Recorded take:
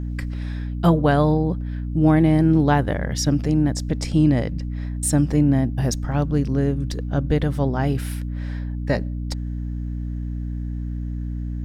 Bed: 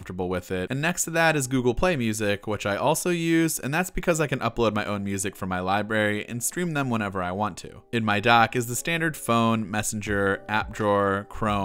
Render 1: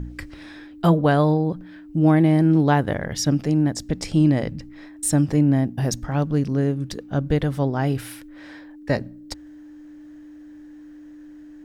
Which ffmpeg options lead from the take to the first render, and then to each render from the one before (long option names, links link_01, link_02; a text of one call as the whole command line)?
ffmpeg -i in.wav -af "bandreject=frequency=60:width_type=h:width=4,bandreject=frequency=120:width_type=h:width=4,bandreject=frequency=180:width_type=h:width=4,bandreject=frequency=240:width_type=h:width=4" out.wav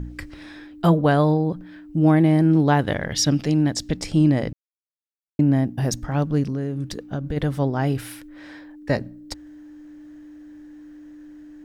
ffmpeg -i in.wav -filter_complex "[0:a]asettb=1/sr,asplit=3[link_01][link_02][link_03];[link_01]atrim=end=2.794[link_04];[link_02]atrim=start=2.79:end=3.97,asetpts=PTS-STARTPTS,afade=type=in:duration=0.004:curve=qsin,afade=type=out:start_time=1.176:duration=0.004:curve=qsin,equalizer=frequency=3600:width_type=o:width=1.5:gain=8[link_05];[link_03]atrim=start=3.966[link_06];[link_04][link_05]acrossfade=duration=0.004:curve1=hsin:curve2=qsin[link_07];[link_07][link_06]acrossfade=duration=0.004:curve1=qsin:curve2=hsin,asplit=3[link_08][link_09][link_10];[link_08]afade=type=out:start_time=6.45:duration=0.02[link_11];[link_09]acompressor=threshold=-22dB:ratio=5:attack=3.2:release=140:knee=1:detection=peak,afade=type=in:start_time=6.45:duration=0.02,afade=type=out:start_time=7.36:duration=0.02[link_12];[link_10]afade=type=in:start_time=7.36:duration=0.02[link_13];[link_11][link_12][link_13]amix=inputs=3:normalize=0,asplit=3[link_14][link_15][link_16];[link_14]atrim=end=4.53,asetpts=PTS-STARTPTS,afade=type=out:start_time=4.526:duration=0.004:curve=hsin[link_17];[link_15]atrim=start=4.53:end=5.39,asetpts=PTS-STARTPTS,volume=0[link_18];[link_16]atrim=start=5.39,asetpts=PTS-STARTPTS,afade=type=in:duration=0.004:curve=hsin[link_19];[link_17][link_18][link_19]concat=n=3:v=0:a=1" out.wav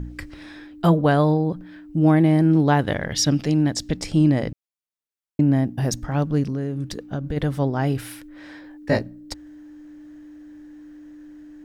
ffmpeg -i in.wav -filter_complex "[0:a]asettb=1/sr,asplit=3[link_01][link_02][link_03];[link_01]atrim=end=8.624[link_04];[link_02]atrim=start=8.62:end=9.03,asetpts=PTS-STARTPTS,afade=type=in:duration=0.004:curve=qsin,afade=type=out:start_time=0.406:duration=0.004:curve=qsin,asplit=2[link_05][link_06];[link_06]adelay=19,volume=-2dB[link_07];[link_05][link_07]amix=inputs=2:normalize=0,atrim=end_sample=18081[link_08];[link_03]atrim=start=9.026[link_09];[link_04][link_08]acrossfade=duration=0.004:curve1=hsin:curve2=qsin[link_10];[link_10][link_09]acrossfade=duration=0.004:curve1=qsin:curve2=hsin" out.wav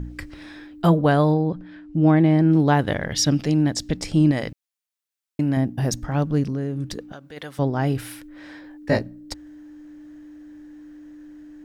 ffmpeg -i in.wav -filter_complex "[0:a]asettb=1/sr,asplit=3[link_01][link_02][link_03];[link_01]atrim=end=1.344[link_04];[link_02]atrim=start=1.34:end=2.52,asetpts=PTS-STARTPTS,afade=type=in:duration=0.004:curve=qsin,afade=type=out:start_time=1.176:duration=0.004:curve=qsin,lowpass=5300[link_05];[link_03]atrim=start=2.516[link_06];[link_04][link_05]acrossfade=duration=0.004:curve1=hsin:curve2=qsin[link_07];[link_07][link_06]acrossfade=duration=0.004:curve1=qsin:curve2=hsin,asettb=1/sr,asplit=3[link_08][link_09][link_10];[link_08]atrim=end=4.314[link_11];[link_09]atrim=start=4.31:end=5.57,asetpts=PTS-STARTPTS,afade=type=in:duration=0.004:curve=qsin,afade=type=out:start_time=1.256:duration=0.004:curve=qsin,tiltshelf=frequency=870:gain=-5[link_12];[link_10]atrim=start=5.566[link_13];[link_11][link_12]acrossfade=duration=0.004:curve1=hsin:curve2=qsin[link_14];[link_14][link_13]acrossfade=duration=0.004:curve1=qsin:curve2=hsin,asettb=1/sr,asplit=3[link_15][link_16][link_17];[link_15]atrim=end=7.124[link_18];[link_16]atrim=start=7.12:end=7.59,asetpts=PTS-STARTPTS,afade=type=in:duration=0.004:curve=qsin,afade=type=out:start_time=0.466:duration=0.004:curve=qsin,highpass=frequency=1400:poles=1[link_19];[link_17]atrim=start=7.586[link_20];[link_18][link_19]acrossfade=duration=0.004:curve1=hsin:curve2=qsin[link_21];[link_21][link_20]acrossfade=duration=0.004:curve1=qsin:curve2=hsin" out.wav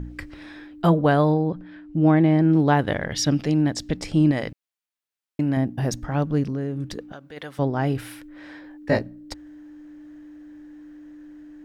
ffmpeg -i in.wav -af "bass=frequency=250:gain=-2,treble=frequency=4000:gain=-5" out.wav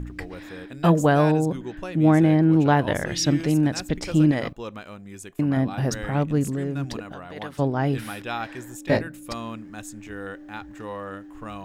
ffmpeg -i in.wav -i bed.wav -filter_complex "[1:a]volume=-12.5dB[link_01];[0:a][link_01]amix=inputs=2:normalize=0" out.wav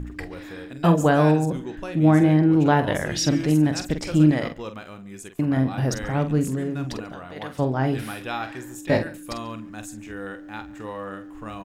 ffmpeg -i in.wav -filter_complex "[0:a]asplit=2[link_01][link_02];[link_02]adelay=46,volume=-9dB[link_03];[link_01][link_03]amix=inputs=2:normalize=0,asplit=2[link_04][link_05];[link_05]adelay=139.9,volume=-21dB,highshelf=frequency=4000:gain=-3.15[link_06];[link_04][link_06]amix=inputs=2:normalize=0" out.wav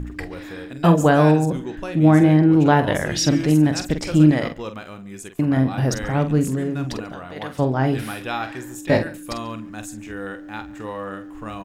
ffmpeg -i in.wav -af "volume=3dB,alimiter=limit=-3dB:level=0:latency=1" out.wav